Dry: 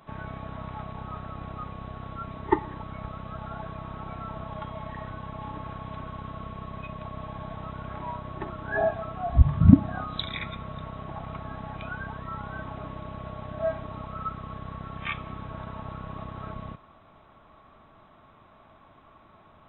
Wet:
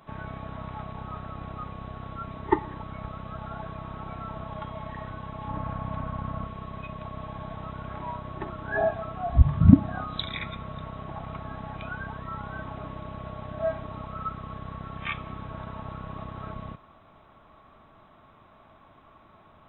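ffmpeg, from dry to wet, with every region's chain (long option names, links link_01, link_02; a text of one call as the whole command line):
ffmpeg -i in.wav -filter_complex "[0:a]asettb=1/sr,asplit=3[link_01][link_02][link_03];[link_01]atrim=end=5.484[link_04];[link_02]atrim=start=5.48:end=6.46,asetpts=PTS-STARTPTS,afade=type=in:duration=0.004:curve=qsin,afade=type=out:start_time=0.976:duration=0.004:curve=qsin,lowpass=frequency=1300:poles=1,equalizer=frequency=380:width=4.7:gain=-15,acontrast=53[link_05];[link_03]atrim=start=6.456[link_06];[link_04][link_05]acrossfade=duration=0.004:curve1=hsin:curve2=qsin[link_07];[link_07][link_06]acrossfade=duration=0.004:curve1=qsin:curve2=hsin" out.wav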